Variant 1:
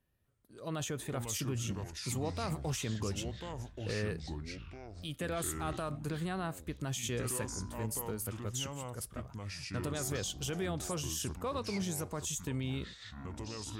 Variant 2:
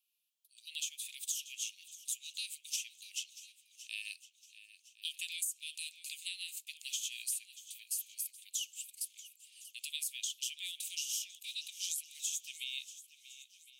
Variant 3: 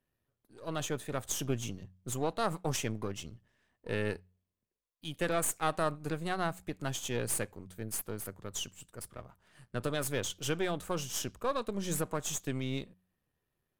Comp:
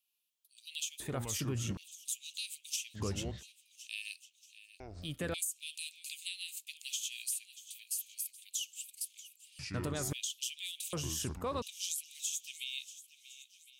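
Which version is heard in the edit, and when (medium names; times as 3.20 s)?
2
1.00–1.77 s: from 1
2.97–3.40 s: from 1, crossfade 0.06 s
4.80–5.34 s: from 1
9.59–10.13 s: from 1
10.93–11.62 s: from 1
not used: 3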